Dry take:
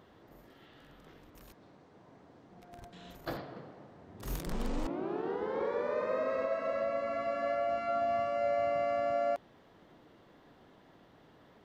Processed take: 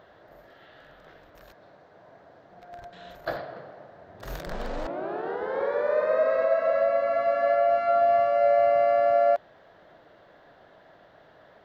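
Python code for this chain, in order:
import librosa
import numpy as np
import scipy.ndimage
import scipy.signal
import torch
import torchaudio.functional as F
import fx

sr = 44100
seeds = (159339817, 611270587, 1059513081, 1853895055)

y = fx.graphic_eq_15(x, sr, hz=(250, 630, 1600, 4000, 10000), db=(-5, 12, 10, 5, -10))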